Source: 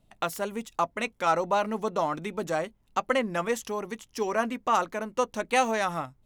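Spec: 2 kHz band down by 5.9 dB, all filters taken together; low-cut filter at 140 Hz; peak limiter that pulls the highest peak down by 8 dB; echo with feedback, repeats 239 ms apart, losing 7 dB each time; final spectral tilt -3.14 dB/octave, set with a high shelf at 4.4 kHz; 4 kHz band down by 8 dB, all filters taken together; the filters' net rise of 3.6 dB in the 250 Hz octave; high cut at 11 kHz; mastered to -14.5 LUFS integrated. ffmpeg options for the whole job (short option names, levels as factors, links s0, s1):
-af "highpass=140,lowpass=11000,equalizer=f=250:t=o:g=5,equalizer=f=2000:t=o:g=-5.5,equalizer=f=4000:t=o:g=-5.5,highshelf=f=4400:g=-6,alimiter=limit=0.0891:level=0:latency=1,aecho=1:1:239|478|717|956|1195:0.447|0.201|0.0905|0.0407|0.0183,volume=6.68"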